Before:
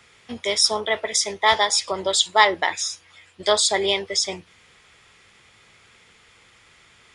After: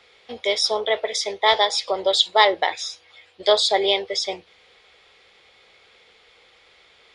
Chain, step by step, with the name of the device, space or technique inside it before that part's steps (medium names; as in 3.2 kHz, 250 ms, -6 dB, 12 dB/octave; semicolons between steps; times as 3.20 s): ten-band graphic EQ 125 Hz -9 dB, 250 Hz -3 dB, 500 Hz +11 dB, 4 kHz +11 dB, 8 kHz -5 dB; inside a helmet (treble shelf 4.5 kHz -5 dB; small resonant body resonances 770/2200 Hz, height 7 dB); trim -4.5 dB